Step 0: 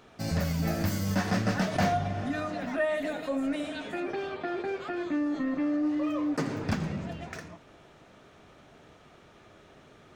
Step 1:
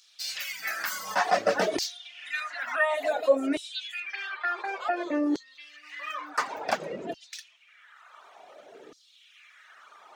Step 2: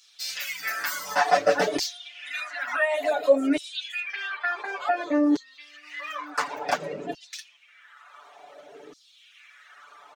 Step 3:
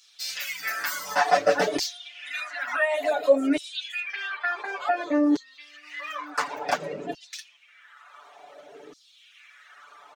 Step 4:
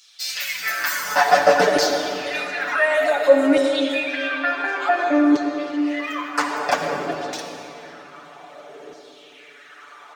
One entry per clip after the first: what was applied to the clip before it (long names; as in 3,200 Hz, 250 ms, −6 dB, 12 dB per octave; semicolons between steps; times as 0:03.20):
auto-filter high-pass saw down 0.56 Hz 360–5,100 Hz; reverb reduction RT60 1.6 s; level +5.5 dB
comb filter 6.9 ms, depth 87%
no processing that can be heard
convolution reverb RT60 3.4 s, pre-delay 51 ms, DRR 3 dB; level +5 dB